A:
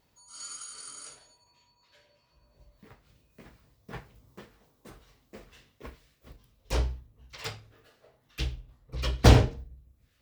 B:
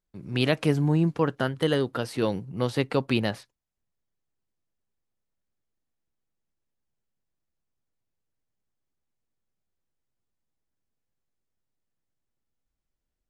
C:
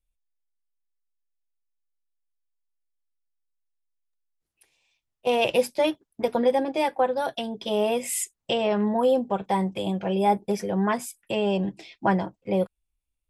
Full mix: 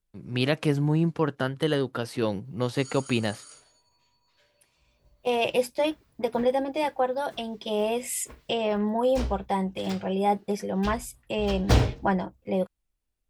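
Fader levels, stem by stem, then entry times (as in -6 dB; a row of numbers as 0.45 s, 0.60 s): -3.5 dB, -1.0 dB, -2.5 dB; 2.45 s, 0.00 s, 0.00 s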